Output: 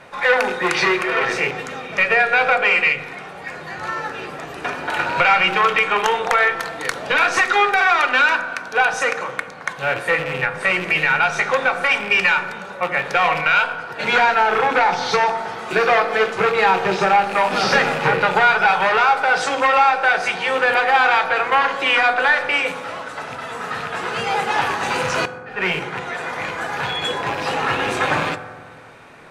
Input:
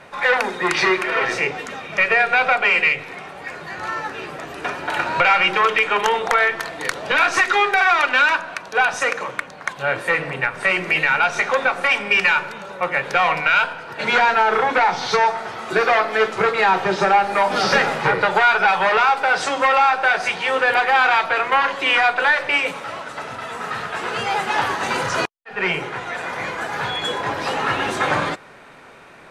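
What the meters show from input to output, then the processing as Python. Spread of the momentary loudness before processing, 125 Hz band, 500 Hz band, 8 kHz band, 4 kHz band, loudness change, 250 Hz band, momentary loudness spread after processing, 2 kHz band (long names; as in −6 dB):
12 LU, +1.5 dB, +1.0 dB, 0.0 dB, +0.5 dB, +0.5 dB, +1.0 dB, 12 LU, +0.5 dB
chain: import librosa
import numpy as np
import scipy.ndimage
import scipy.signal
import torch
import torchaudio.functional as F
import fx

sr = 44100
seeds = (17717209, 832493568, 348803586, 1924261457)

y = fx.rattle_buzz(x, sr, strikes_db=-34.0, level_db=-18.0)
y = fx.rev_fdn(y, sr, rt60_s=1.7, lf_ratio=1.45, hf_ratio=0.3, size_ms=12.0, drr_db=10.0)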